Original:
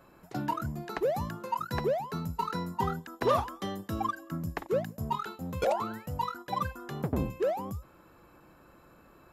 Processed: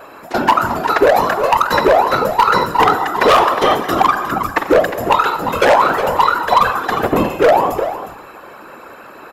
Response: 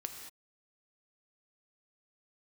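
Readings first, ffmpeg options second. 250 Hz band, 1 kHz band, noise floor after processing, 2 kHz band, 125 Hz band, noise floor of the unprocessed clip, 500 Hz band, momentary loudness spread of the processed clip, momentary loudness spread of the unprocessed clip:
+14.0 dB, +21.0 dB, -37 dBFS, +24.5 dB, +6.5 dB, -58 dBFS, +18.0 dB, 7 LU, 7 LU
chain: -filter_complex "[0:a]bass=f=250:g=-13,treble=f=4k:g=-7,aeval=exprs='0.266*(cos(1*acos(clip(val(0)/0.266,-1,1)))-cos(1*PI/2))+0.0376*(cos(4*acos(clip(val(0)/0.266,-1,1)))-cos(4*PI/2))':c=same,asplit=2[a][b];[b]aecho=0:1:359:0.251[c];[a][c]amix=inputs=2:normalize=0,asoftclip=type=tanh:threshold=-19.5dB,asplit=2[d][e];[1:a]atrim=start_sample=2205[f];[e][f]afir=irnorm=-1:irlink=0,volume=2.5dB[g];[d][g]amix=inputs=2:normalize=0,afftfilt=real='hypot(re,im)*cos(2*PI*random(0))':imag='hypot(re,im)*sin(2*PI*random(1))':win_size=512:overlap=0.75,aeval=exprs='0.0668*(abs(mod(val(0)/0.0668+3,4)-2)-1)':c=same,lowshelf=f=240:g=-8.5,alimiter=level_in=25dB:limit=-1dB:release=50:level=0:latency=1,volume=-1dB"

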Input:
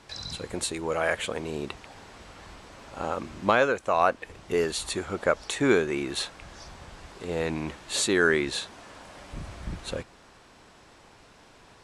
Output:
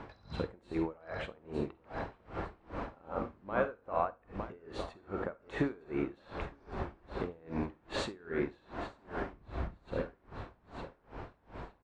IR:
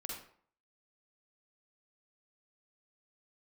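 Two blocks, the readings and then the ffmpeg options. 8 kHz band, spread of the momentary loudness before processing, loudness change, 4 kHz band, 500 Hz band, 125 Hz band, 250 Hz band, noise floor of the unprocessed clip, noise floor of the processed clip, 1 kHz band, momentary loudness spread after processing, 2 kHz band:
-26.0 dB, 23 LU, -12.0 dB, -16.5 dB, -10.5 dB, -4.5 dB, -7.0 dB, -54 dBFS, -67 dBFS, -9.5 dB, 14 LU, -14.5 dB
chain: -filter_complex "[0:a]lowpass=1.4k,acompressor=threshold=-43dB:ratio=3,aeval=exprs='val(0)+0.000794*(sin(2*PI*50*n/s)+sin(2*PI*2*50*n/s)/2+sin(2*PI*3*50*n/s)/3+sin(2*PI*4*50*n/s)/4+sin(2*PI*5*50*n/s)/5)':c=same,aecho=1:1:910|1820|2730|3640|4550:0.266|0.128|0.0613|0.0294|0.0141,asplit=2[a][b];[1:a]atrim=start_sample=2205,highshelf=f=4.6k:g=8[c];[b][c]afir=irnorm=-1:irlink=0,volume=0.5dB[d];[a][d]amix=inputs=2:normalize=0,aeval=exprs='val(0)*pow(10,-29*(0.5-0.5*cos(2*PI*2.5*n/s))/20)':c=same,volume=6.5dB"

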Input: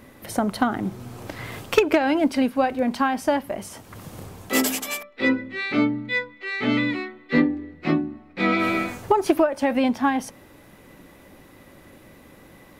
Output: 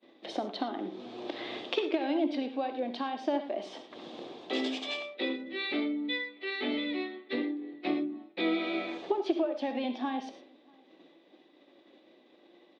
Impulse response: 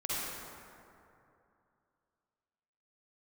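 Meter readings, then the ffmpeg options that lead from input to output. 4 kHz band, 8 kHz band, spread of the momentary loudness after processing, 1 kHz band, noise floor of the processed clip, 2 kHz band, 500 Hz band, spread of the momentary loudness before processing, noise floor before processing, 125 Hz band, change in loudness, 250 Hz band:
-3.5 dB, under -20 dB, 9 LU, -11.5 dB, -62 dBFS, -11.5 dB, -9.0 dB, 15 LU, -50 dBFS, under -20 dB, -10.0 dB, -10.0 dB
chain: -filter_complex "[0:a]agate=range=-33dB:threshold=-40dB:ratio=3:detection=peak,acompressor=threshold=-30dB:ratio=3,flanger=delay=5.9:depth=2.7:regen=83:speed=0.36:shape=triangular,highpass=f=260:w=0.5412,highpass=f=260:w=1.3066,equalizer=f=340:t=q:w=4:g=6,equalizer=f=700:t=q:w=4:g=4,equalizer=f=990:t=q:w=4:g=-4,equalizer=f=1.4k:t=q:w=4:g=-9,equalizer=f=2k:t=q:w=4:g=-4,equalizer=f=3.6k:t=q:w=4:g=10,lowpass=f=4.4k:w=0.5412,lowpass=f=4.4k:w=1.3066,asplit=2[a][b];[b]adelay=641.4,volume=-29dB,highshelf=f=4k:g=-14.4[c];[a][c]amix=inputs=2:normalize=0,asplit=2[d][e];[1:a]atrim=start_sample=2205,afade=t=out:st=0.17:d=0.01,atrim=end_sample=7938[f];[e][f]afir=irnorm=-1:irlink=0,volume=-7dB[g];[d][g]amix=inputs=2:normalize=0"

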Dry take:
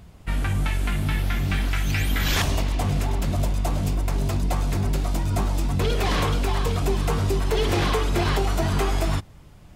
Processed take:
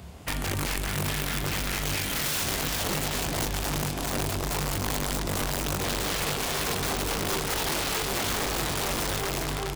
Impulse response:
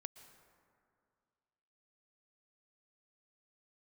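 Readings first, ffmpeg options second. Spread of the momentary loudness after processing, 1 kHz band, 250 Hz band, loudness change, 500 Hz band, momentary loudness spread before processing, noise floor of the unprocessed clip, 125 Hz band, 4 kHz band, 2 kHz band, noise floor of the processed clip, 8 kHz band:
2 LU, -2.5 dB, -5.0 dB, -3.5 dB, -4.5 dB, 3 LU, -46 dBFS, -9.0 dB, +1.5 dB, -0.5 dB, -31 dBFS, +6.0 dB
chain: -filter_complex "[0:a]highpass=f=46:w=0.5412,highpass=f=46:w=1.3066,equalizer=f=580:w=0.53:g=3.5,aecho=1:1:392|784|1176|1568|1960|2352|2744:0.501|0.276|0.152|0.0834|0.0459|0.0252|0.0139,asoftclip=type=tanh:threshold=-15dB,acrossover=split=780|1700[a][b][c];[b]alimiter=level_in=8.5dB:limit=-24dB:level=0:latency=1:release=36,volume=-8.5dB[d];[a][d][c]amix=inputs=3:normalize=0[e];[1:a]atrim=start_sample=2205[f];[e][f]afir=irnorm=-1:irlink=0,acompressor=threshold=-37dB:ratio=2.5,highshelf=f=2.2k:g=5,asplit=2[g][h];[h]adelay=28,volume=-6dB[i];[g][i]amix=inputs=2:normalize=0,aeval=exprs='(mod(31.6*val(0)+1,2)-1)/31.6':c=same,volume=7dB"

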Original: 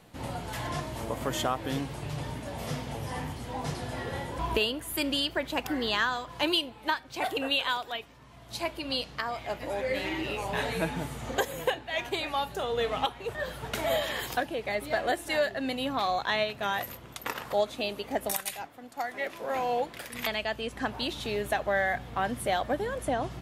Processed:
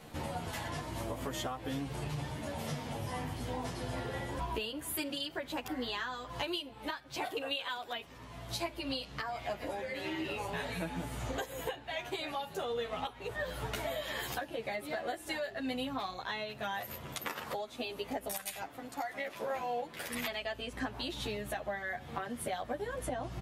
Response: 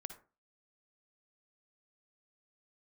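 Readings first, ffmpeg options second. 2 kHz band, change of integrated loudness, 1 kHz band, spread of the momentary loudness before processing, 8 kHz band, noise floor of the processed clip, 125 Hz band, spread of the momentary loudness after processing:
-7.5 dB, -7.0 dB, -7.5 dB, 8 LU, -4.5 dB, -51 dBFS, -4.0 dB, 3 LU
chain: -filter_complex "[0:a]acompressor=threshold=-40dB:ratio=6,asplit=2[a][b];[b]adelay=10.7,afreqshift=0.41[c];[a][c]amix=inputs=2:normalize=1,volume=7.5dB"

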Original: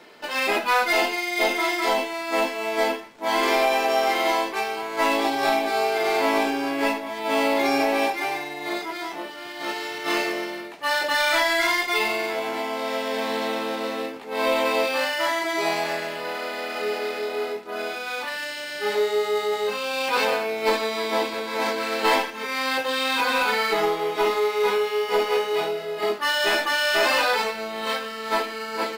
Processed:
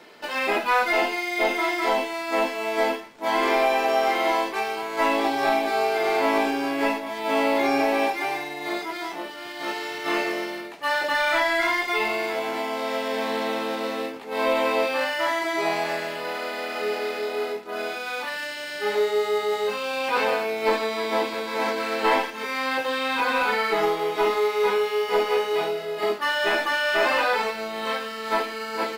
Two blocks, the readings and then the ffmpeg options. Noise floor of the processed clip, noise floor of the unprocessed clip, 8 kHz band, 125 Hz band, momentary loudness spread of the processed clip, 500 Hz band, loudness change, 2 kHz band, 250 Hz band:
-35 dBFS, -35 dBFS, -5.0 dB, 0.0 dB, 8 LU, 0.0 dB, -0.5 dB, -1.0 dB, 0.0 dB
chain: -filter_complex "[0:a]acrossover=split=2800[a][b];[b]acompressor=threshold=-36dB:ratio=4:attack=1:release=60[c];[a][c]amix=inputs=2:normalize=0"

